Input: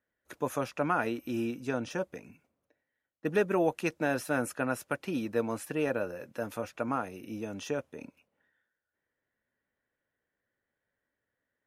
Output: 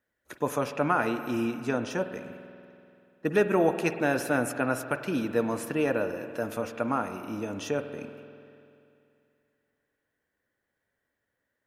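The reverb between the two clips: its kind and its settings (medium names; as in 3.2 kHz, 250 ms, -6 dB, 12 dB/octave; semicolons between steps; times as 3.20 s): spring tank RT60 2.6 s, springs 48 ms, chirp 30 ms, DRR 9 dB; trim +3.5 dB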